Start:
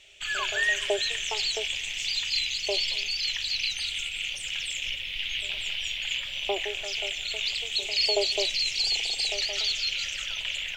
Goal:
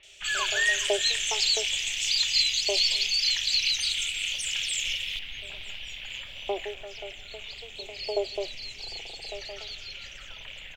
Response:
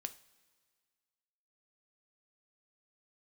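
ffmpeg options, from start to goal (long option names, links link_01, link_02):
-filter_complex "[0:a]asetnsamples=nb_out_samples=441:pad=0,asendcmd='5.16 equalizer g -9;6.71 equalizer g -15',equalizer=frequency=7800:width_type=o:width=3:gain=7,acrossover=split=2600[link_01][link_02];[link_02]adelay=30[link_03];[link_01][link_03]amix=inputs=2:normalize=0"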